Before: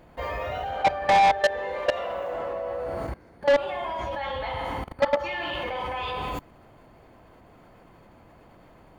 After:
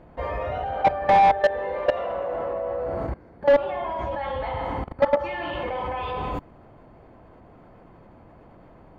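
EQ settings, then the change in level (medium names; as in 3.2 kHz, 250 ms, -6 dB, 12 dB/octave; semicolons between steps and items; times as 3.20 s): low-pass 1.1 kHz 6 dB/octave; +4.0 dB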